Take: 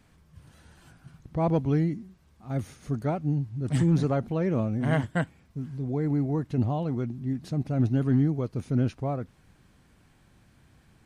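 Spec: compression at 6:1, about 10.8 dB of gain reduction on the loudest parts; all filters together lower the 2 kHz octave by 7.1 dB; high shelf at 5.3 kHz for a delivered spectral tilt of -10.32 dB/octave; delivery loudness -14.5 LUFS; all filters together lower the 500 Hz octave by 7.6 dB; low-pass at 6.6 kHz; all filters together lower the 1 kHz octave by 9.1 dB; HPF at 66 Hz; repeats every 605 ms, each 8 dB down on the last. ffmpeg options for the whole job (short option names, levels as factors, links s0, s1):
-af "highpass=66,lowpass=6600,equalizer=f=500:t=o:g=-7.5,equalizer=f=1000:t=o:g=-8.5,equalizer=f=2000:t=o:g=-6,highshelf=f=5300:g=6,acompressor=threshold=0.0251:ratio=6,aecho=1:1:605|1210|1815|2420|3025:0.398|0.159|0.0637|0.0255|0.0102,volume=12.6"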